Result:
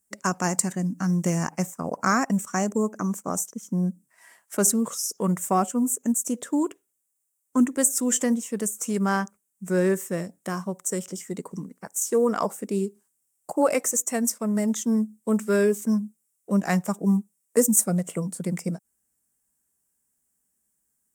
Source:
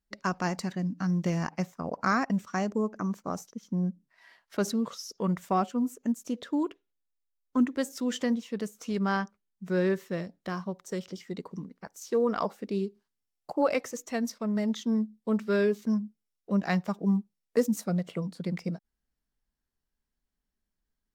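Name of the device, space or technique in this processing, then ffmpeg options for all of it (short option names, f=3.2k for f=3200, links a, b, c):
budget condenser microphone: -af "highpass=100,highshelf=f=5.9k:t=q:w=3:g=13,volume=4.5dB"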